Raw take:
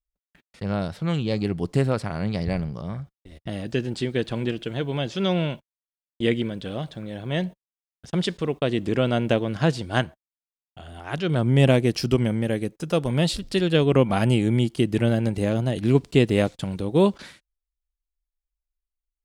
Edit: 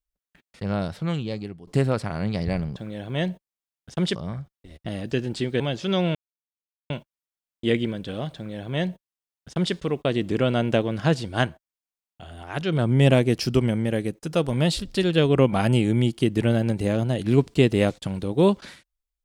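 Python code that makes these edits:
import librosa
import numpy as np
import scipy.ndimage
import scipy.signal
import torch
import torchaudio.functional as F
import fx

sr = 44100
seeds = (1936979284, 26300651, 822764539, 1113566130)

y = fx.edit(x, sr, fx.fade_out_to(start_s=0.98, length_s=0.69, floor_db=-23.5),
    fx.cut(start_s=4.21, length_s=0.71),
    fx.insert_silence(at_s=5.47, length_s=0.75),
    fx.duplicate(start_s=6.92, length_s=1.39, to_s=2.76), tone=tone)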